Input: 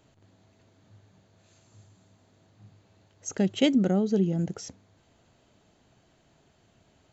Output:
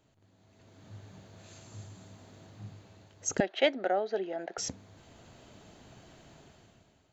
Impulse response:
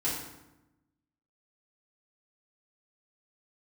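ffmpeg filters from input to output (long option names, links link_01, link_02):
-filter_complex "[0:a]dynaudnorm=framelen=160:gausssize=9:maxgain=15.5dB,asettb=1/sr,asplit=3[link_01][link_02][link_03];[link_01]atrim=end=3.404[link_04];[link_02]atrim=start=3.4:end=4.58,asetpts=PTS-STARTPTS,afade=type=in:duration=0.004:curve=qsin,afade=type=out:start_time=1.176:duration=0.004:curve=qsin,highpass=frequency=460:width=0.5412,highpass=frequency=460:width=1.3066,equalizer=frequency=470:width_type=q:width=4:gain=-6,equalizer=frequency=690:width_type=q:width=4:gain=7,equalizer=frequency=1100:width_type=q:width=4:gain=-4,equalizer=frequency=1700:width_type=q:width=4:gain=7,equalizer=frequency=3000:width_type=q:width=4:gain=-6,lowpass=frequency=3900:width=0.5412,lowpass=frequency=3900:width=1.3066[link_05];[link_03]atrim=start=4.576[link_06];[link_04][link_05]acrossfade=duration=0.004:curve1=hsin:curve2=qsin[link_07];[link_07][link_06]acrossfade=duration=0.004:curve1=qsin:curve2=hsin,volume=-6.5dB"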